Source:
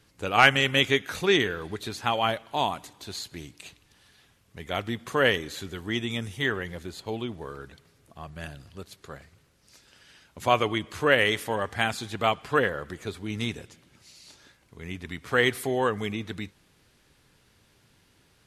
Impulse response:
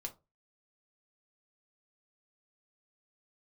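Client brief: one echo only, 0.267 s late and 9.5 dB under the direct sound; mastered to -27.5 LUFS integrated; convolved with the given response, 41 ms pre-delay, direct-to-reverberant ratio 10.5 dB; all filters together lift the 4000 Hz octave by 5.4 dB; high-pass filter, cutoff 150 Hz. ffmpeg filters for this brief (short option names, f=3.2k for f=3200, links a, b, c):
-filter_complex "[0:a]highpass=150,equalizer=f=4k:t=o:g=7.5,aecho=1:1:267:0.335,asplit=2[a][b];[1:a]atrim=start_sample=2205,adelay=41[c];[b][c]afir=irnorm=-1:irlink=0,volume=-8dB[d];[a][d]amix=inputs=2:normalize=0,volume=-3.5dB"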